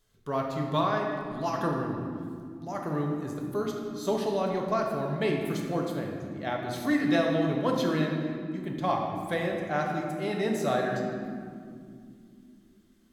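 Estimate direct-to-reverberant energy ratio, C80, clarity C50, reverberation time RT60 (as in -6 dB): 0.0 dB, 3.5 dB, 2.5 dB, 2.6 s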